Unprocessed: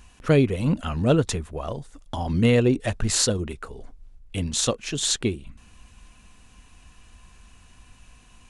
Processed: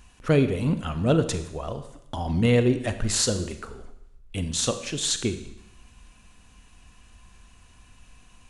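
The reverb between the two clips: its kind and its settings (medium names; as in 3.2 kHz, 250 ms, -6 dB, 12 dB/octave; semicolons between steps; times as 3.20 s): Schroeder reverb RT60 0.83 s, combs from 33 ms, DRR 9.5 dB; trim -2 dB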